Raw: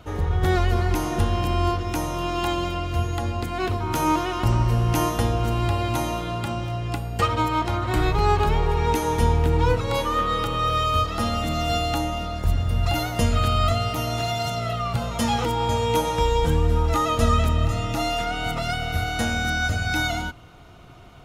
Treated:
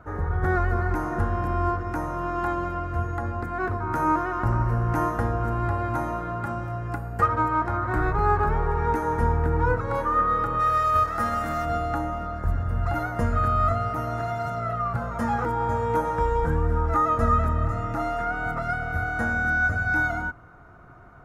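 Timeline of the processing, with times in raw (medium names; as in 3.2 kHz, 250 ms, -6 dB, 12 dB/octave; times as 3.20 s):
6.44–7.25 s: treble shelf 5.4 kHz -> 9.5 kHz +8 dB
10.59–11.64 s: formants flattened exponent 0.6
whole clip: resonant high shelf 2.2 kHz -12.5 dB, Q 3; trim -3.5 dB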